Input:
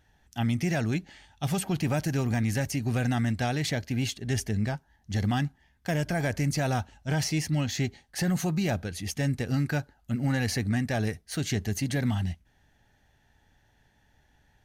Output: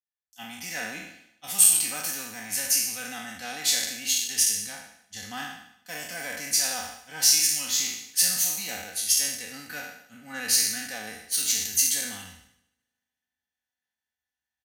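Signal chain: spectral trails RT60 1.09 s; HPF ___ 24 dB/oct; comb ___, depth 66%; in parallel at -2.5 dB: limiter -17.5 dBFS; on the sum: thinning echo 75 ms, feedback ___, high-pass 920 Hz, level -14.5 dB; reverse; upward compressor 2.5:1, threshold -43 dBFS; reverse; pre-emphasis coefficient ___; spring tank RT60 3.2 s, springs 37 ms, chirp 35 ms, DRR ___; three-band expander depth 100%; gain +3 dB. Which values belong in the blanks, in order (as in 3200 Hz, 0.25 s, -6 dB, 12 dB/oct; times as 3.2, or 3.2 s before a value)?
65 Hz, 4 ms, 73%, 0.97, 16 dB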